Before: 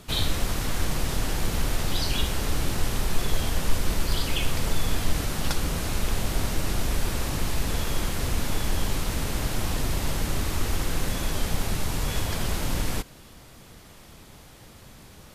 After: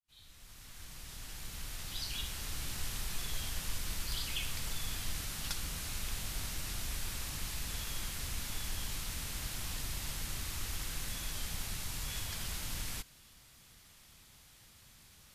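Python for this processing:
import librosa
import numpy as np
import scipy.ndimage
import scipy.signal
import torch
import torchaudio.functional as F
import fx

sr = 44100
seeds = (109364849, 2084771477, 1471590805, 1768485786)

y = fx.fade_in_head(x, sr, length_s=2.84)
y = fx.tone_stack(y, sr, knobs='5-5-5')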